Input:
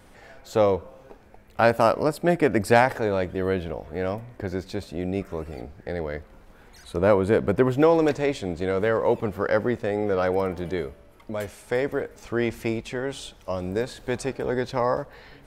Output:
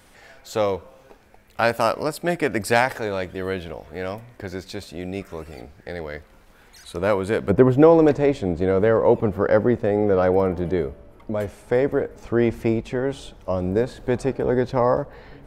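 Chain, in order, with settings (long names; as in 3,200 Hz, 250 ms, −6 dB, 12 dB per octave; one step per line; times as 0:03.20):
tilt shelving filter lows −4 dB, about 1,400 Hz, from 0:07.49 lows +5.5 dB
level +1 dB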